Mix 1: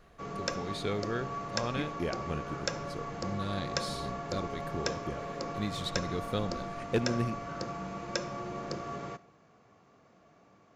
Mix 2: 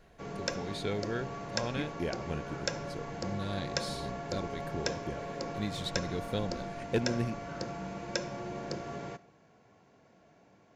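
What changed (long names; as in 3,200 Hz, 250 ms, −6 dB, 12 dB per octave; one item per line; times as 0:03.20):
speech: send off
master: add Butterworth band-reject 1,200 Hz, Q 5.8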